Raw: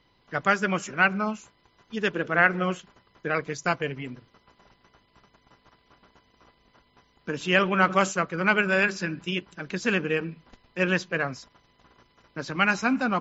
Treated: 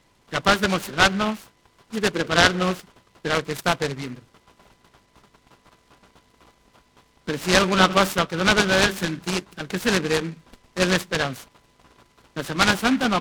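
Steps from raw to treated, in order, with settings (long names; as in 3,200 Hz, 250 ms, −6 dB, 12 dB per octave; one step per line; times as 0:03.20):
short delay modulated by noise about 1,700 Hz, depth 0.078 ms
level +4 dB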